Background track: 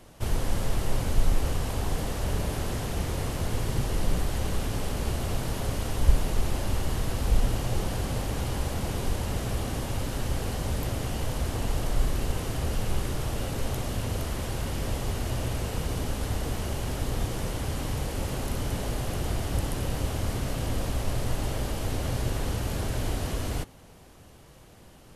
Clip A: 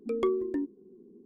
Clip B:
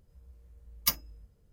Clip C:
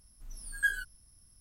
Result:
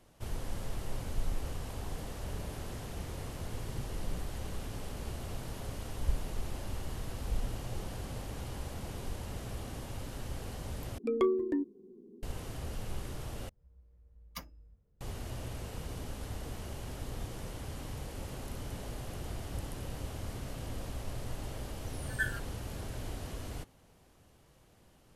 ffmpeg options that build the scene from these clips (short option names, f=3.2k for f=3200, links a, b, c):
-filter_complex "[0:a]volume=-11dB[a];[2:a]lowpass=f=1.4k:p=1[b];[3:a]aeval=exprs='val(0)*sin(2*PI*110*n/s)':c=same[c];[a]asplit=3[d][e][f];[d]atrim=end=10.984[g];[1:a]atrim=end=1.25,asetpts=PTS-STARTPTS,volume=-0.5dB[h];[e]atrim=start=12.226:end=13.494[i];[b]atrim=end=1.52,asetpts=PTS-STARTPTS,volume=-6dB[j];[f]atrim=start=15.006[k];[c]atrim=end=1.4,asetpts=PTS-STARTPTS,volume=-2dB,afade=t=in:d=0.004:c=hsin,afade=t=out:st=1.396:d=0.004:c=hsin,adelay=21560[l];[g][h]acrossfade=d=0.004:c1=hsin:c2=hsin[m];[m][i]acrossfade=d=0.004:c1=hsin:c2=hsin[n];[n][j]acrossfade=d=0.004:c1=hsin:c2=hsin[o];[o][k]acrossfade=d=0.004:c1=hsin:c2=hsin[p];[p][l]amix=inputs=2:normalize=0"